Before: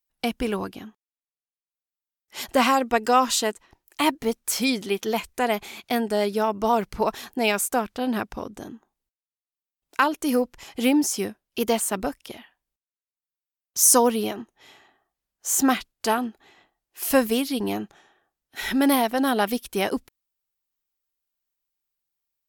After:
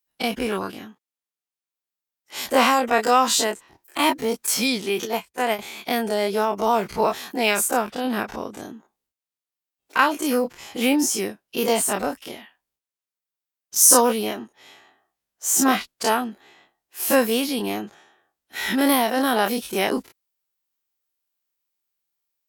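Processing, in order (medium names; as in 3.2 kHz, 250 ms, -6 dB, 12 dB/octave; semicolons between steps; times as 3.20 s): every event in the spectrogram widened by 60 ms; high-pass 150 Hz 6 dB/octave; 5.05–5.59 s: upward expansion 2.5:1, over -30 dBFS; trim -1 dB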